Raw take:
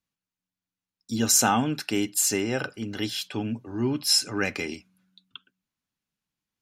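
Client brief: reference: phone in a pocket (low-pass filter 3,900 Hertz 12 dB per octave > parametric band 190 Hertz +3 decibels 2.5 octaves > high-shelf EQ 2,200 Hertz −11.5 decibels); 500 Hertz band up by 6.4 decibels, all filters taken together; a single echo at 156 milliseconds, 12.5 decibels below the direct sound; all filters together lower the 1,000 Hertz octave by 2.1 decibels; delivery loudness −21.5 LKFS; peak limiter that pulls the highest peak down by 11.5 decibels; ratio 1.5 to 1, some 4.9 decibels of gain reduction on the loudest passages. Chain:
parametric band 500 Hz +8 dB
parametric band 1,000 Hz −5 dB
downward compressor 1.5 to 1, threshold −31 dBFS
brickwall limiter −25 dBFS
low-pass filter 3,900 Hz 12 dB per octave
parametric band 190 Hz +3 dB 2.5 octaves
high-shelf EQ 2,200 Hz −11.5 dB
single-tap delay 156 ms −12.5 dB
level +13 dB

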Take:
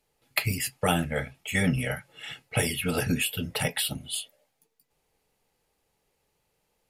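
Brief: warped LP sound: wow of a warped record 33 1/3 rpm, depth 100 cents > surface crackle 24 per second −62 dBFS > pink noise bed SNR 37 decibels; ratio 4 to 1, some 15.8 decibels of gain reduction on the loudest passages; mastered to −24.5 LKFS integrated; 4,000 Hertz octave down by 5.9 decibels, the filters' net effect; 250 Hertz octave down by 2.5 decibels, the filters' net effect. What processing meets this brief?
parametric band 250 Hz −3.5 dB
parametric band 4,000 Hz −8.5 dB
downward compressor 4 to 1, threshold −42 dBFS
wow of a warped record 33 1/3 rpm, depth 100 cents
surface crackle 24 per second −62 dBFS
pink noise bed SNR 37 dB
level +19 dB

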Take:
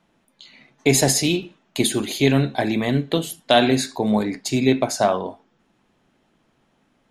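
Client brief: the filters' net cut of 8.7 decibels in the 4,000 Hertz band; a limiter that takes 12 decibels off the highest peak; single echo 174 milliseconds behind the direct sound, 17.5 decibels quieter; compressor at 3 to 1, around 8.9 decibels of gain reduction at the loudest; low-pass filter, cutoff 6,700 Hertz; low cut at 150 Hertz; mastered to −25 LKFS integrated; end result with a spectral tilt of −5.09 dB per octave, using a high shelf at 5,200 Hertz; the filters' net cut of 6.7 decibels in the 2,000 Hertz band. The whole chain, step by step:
high-pass filter 150 Hz
low-pass filter 6,700 Hz
parametric band 2,000 Hz −6 dB
parametric band 4,000 Hz −5 dB
high-shelf EQ 5,200 Hz −8 dB
downward compressor 3 to 1, threshold −25 dBFS
brickwall limiter −23 dBFS
single-tap delay 174 ms −17.5 dB
level +8.5 dB

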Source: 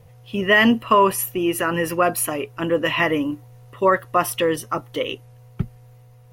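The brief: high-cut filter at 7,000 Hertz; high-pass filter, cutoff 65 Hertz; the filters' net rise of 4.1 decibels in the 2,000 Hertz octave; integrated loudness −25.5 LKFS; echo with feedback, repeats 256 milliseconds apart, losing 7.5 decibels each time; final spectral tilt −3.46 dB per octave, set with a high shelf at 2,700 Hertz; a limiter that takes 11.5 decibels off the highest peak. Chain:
high-pass filter 65 Hz
low-pass filter 7,000 Hz
parametric band 2,000 Hz +7 dB
high-shelf EQ 2,700 Hz −7 dB
brickwall limiter −13 dBFS
repeating echo 256 ms, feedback 42%, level −7.5 dB
level −1.5 dB

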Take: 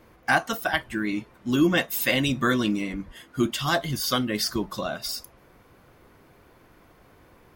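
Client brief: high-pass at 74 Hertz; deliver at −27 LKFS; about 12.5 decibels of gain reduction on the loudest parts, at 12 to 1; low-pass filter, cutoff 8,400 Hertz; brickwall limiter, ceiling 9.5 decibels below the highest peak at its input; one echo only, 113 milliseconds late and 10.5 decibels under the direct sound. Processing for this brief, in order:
high-pass filter 74 Hz
low-pass filter 8,400 Hz
downward compressor 12 to 1, threshold −28 dBFS
brickwall limiter −25.5 dBFS
single-tap delay 113 ms −10.5 dB
level +8.5 dB

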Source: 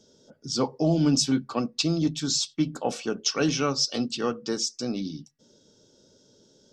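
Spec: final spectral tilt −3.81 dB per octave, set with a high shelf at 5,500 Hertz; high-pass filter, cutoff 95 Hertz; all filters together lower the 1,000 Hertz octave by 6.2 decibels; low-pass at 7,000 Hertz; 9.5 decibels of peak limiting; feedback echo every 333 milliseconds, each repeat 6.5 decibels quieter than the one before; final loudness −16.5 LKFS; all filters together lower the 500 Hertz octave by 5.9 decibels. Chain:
high-pass filter 95 Hz
low-pass filter 7,000 Hz
parametric band 500 Hz −6 dB
parametric band 1,000 Hz −7 dB
high-shelf EQ 5,500 Hz +8 dB
brickwall limiter −17.5 dBFS
repeating echo 333 ms, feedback 47%, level −6.5 dB
level +11.5 dB

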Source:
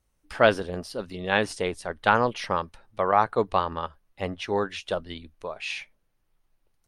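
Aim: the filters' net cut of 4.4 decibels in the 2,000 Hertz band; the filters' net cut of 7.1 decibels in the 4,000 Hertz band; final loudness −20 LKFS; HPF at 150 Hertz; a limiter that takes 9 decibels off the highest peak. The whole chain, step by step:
high-pass filter 150 Hz
parametric band 2,000 Hz −5 dB
parametric band 4,000 Hz −7.5 dB
level +11.5 dB
brickwall limiter −3 dBFS

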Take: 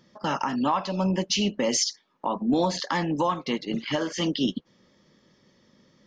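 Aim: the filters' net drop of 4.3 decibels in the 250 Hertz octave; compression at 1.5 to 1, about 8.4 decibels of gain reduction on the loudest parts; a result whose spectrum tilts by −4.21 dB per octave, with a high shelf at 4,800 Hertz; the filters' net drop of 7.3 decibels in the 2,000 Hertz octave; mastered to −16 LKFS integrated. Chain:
parametric band 250 Hz −5.5 dB
parametric band 2,000 Hz −8.5 dB
high-shelf EQ 4,800 Hz −5 dB
downward compressor 1.5 to 1, threshold −46 dBFS
level +21 dB

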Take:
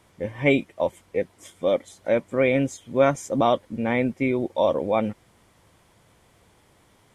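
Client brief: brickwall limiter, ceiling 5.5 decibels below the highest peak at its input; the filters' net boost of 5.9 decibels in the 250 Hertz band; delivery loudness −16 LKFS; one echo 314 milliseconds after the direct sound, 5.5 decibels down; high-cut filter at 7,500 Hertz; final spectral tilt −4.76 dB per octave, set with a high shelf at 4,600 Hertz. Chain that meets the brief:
low-pass filter 7,500 Hz
parametric band 250 Hz +6.5 dB
high-shelf EQ 4,600 Hz −4.5 dB
brickwall limiter −10.5 dBFS
single-tap delay 314 ms −5.5 dB
level +6.5 dB

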